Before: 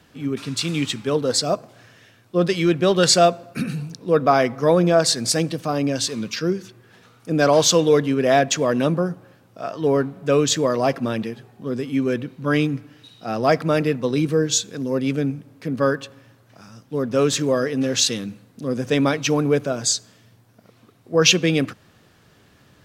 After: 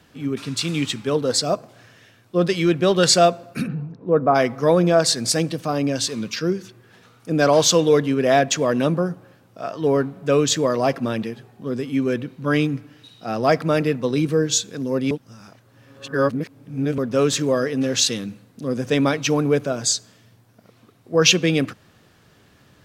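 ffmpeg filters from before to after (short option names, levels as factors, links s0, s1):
-filter_complex "[0:a]asplit=3[s0][s1][s2];[s0]afade=t=out:st=3.66:d=0.02[s3];[s1]lowpass=1200,afade=t=in:st=3.66:d=0.02,afade=t=out:st=4.34:d=0.02[s4];[s2]afade=t=in:st=4.34:d=0.02[s5];[s3][s4][s5]amix=inputs=3:normalize=0,asplit=3[s6][s7][s8];[s6]atrim=end=15.112[s9];[s7]atrim=start=15.108:end=16.982,asetpts=PTS-STARTPTS,areverse[s10];[s8]atrim=start=16.978[s11];[s9][s10]acrossfade=d=0.004:c1=hsin:c2=hsin[s12];[s12][s11]acrossfade=d=0.004:c1=hsin:c2=hsin"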